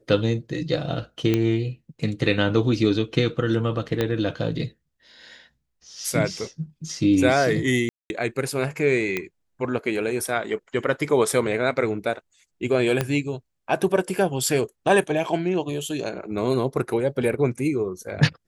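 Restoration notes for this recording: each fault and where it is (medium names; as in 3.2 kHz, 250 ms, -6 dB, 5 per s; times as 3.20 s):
1.34 s: pop -9 dBFS
4.01 s: pop -10 dBFS
7.89–8.10 s: dropout 211 ms
9.17 s: pop -11 dBFS
13.01 s: pop -8 dBFS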